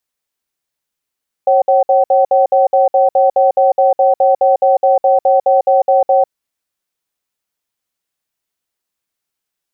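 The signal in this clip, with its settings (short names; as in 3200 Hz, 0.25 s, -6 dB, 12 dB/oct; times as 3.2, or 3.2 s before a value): cadence 544 Hz, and 762 Hz, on 0.15 s, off 0.06 s, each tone -10 dBFS 4.79 s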